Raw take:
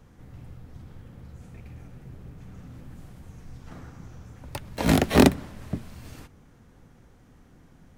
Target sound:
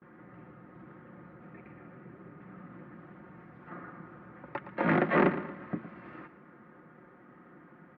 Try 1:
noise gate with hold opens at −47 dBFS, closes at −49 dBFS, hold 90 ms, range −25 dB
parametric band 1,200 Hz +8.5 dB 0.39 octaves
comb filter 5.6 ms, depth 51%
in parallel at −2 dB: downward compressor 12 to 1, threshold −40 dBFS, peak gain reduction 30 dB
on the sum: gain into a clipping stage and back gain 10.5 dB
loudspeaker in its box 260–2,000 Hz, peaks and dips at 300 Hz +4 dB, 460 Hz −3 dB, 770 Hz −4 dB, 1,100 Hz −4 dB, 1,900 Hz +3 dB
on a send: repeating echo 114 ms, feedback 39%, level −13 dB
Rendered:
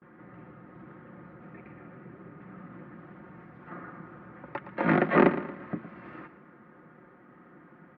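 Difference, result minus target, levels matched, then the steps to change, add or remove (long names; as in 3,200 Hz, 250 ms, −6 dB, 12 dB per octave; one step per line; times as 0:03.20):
downward compressor: peak gain reduction −9 dB; gain into a clipping stage and back: distortion −6 dB
change: downward compressor 12 to 1, threshold −50 dBFS, peak gain reduction 39.5 dB
change: gain into a clipping stage and back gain 16.5 dB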